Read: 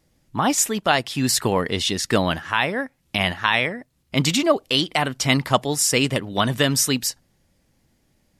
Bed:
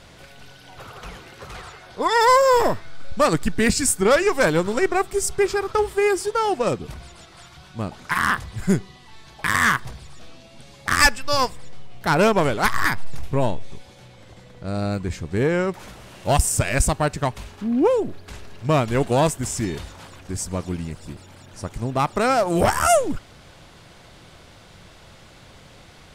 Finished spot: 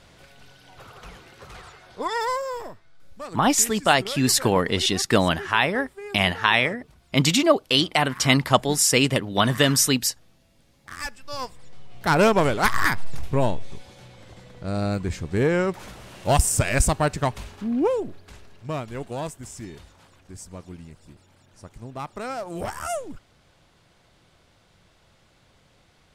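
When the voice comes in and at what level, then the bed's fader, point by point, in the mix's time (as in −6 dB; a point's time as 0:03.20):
3.00 s, +0.5 dB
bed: 0:02.01 −5.5 dB
0:02.71 −19 dB
0:10.95 −19 dB
0:12.08 −0.5 dB
0:17.41 −0.5 dB
0:18.96 −12.5 dB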